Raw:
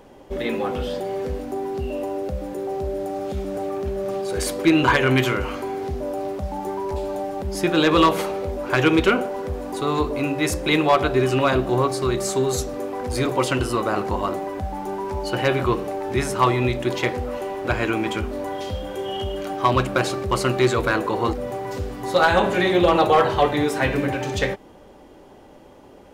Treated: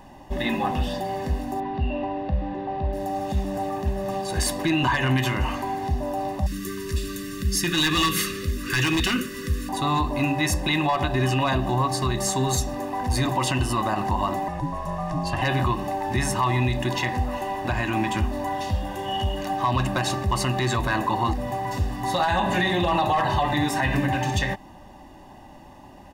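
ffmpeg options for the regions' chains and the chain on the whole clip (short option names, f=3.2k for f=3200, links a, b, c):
-filter_complex "[0:a]asettb=1/sr,asplit=3[a][b][c];[a]atrim=end=1.604[d];[b]atrim=start=1.6:end=2.93,asetpts=PTS-STARTPTS,afade=t=in:d=0.004:c=qsin,afade=t=out:st=1.326:d=0.004:c=qsin,lowpass=f=3.6k:w=0.5412,lowpass=f=3.6k:w=1.3066,asplit=2[e][f];[f]adelay=37,volume=-13dB[g];[e][g]amix=inputs=2:normalize=0,atrim=end_sample=58653[h];[c]atrim=start=2.926[i];[d][h]acrossfade=d=0.004:c1=hsin:c2=qsin[j];[j][i]acrossfade=d=0.004:c1=qsin:c2=hsin,asettb=1/sr,asplit=3[k][l][m];[k]atrim=end=6.464[n];[l]atrim=start=6.46:end=9.69,asetpts=PTS-STARTPTS,afade=t=in:d=0.004:c=qsin,afade=t=out:st=3.226:d=0.004:c=qsin,asuperstop=centerf=760:order=12:qfactor=1.2,highshelf=f=2.6k:g=10.5,volume=14.5dB,asoftclip=hard,volume=-14.5dB[o];[m]atrim=start=9.686[p];[n][o]acrossfade=d=0.004:c1=hsin:c2=qsin[q];[q][p]acrossfade=d=0.004:c1=qsin:c2=hsin,asettb=1/sr,asplit=3[r][s][t];[r]atrim=end=14.484[u];[s]atrim=start=14.48:end=15.42,asetpts=PTS-STARTPTS,afade=t=in:d=0.004:c=qsin,afade=t=out:st=0.936:d=0.004:c=qsin,lowpass=11k,aeval=exprs='val(0)*sin(2*PI*220*n/s)':c=same[v];[t]atrim=start=15.416[w];[u][v]acrossfade=d=0.004:c1=hsin:c2=qsin[x];[x][w]acrossfade=d=0.004:c1=qsin:c2=hsin,aecho=1:1:1.1:0.86,alimiter=limit=-13.5dB:level=0:latency=1:release=87"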